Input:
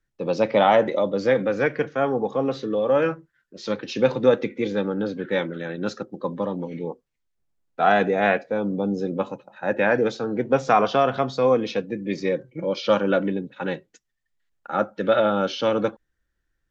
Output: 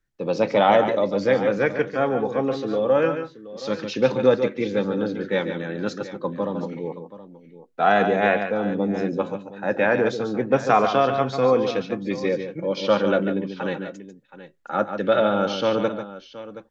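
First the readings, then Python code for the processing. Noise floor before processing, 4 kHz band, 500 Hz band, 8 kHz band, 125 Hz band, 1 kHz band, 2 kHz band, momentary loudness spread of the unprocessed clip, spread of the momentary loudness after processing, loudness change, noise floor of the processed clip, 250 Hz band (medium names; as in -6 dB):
-77 dBFS, +0.5 dB, +0.5 dB, no reading, +1.0 dB, +0.5 dB, +0.5 dB, 11 LU, 12 LU, +0.5 dB, -50 dBFS, +1.0 dB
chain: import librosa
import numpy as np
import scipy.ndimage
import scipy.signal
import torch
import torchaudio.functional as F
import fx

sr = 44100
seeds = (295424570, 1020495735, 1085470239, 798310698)

y = fx.echo_multitap(x, sr, ms=(143, 153, 723), db=(-9.0, -17.5, -15.5))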